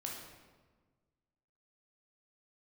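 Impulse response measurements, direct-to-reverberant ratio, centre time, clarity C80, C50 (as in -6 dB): -2.0 dB, 60 ms, 5.0 dB, 2.0 dB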